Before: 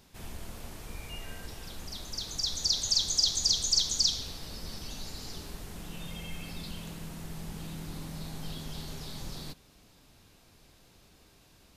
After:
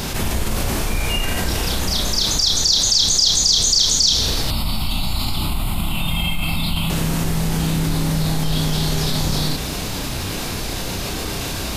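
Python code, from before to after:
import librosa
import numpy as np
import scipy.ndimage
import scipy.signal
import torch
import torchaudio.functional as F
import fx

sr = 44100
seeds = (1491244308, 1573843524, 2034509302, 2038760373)

y = fx.fixed_phaser(x, sr, hz=1700.0, stages=6, at=(4.47, 6.9))
y = fx.doubler(y, sr, ms=32.0, db=-2)
y = fx.env_flatten(y, sr, amount_pct=70)
y = F.gain(torch.from_numpy(y), 7.0).numpy()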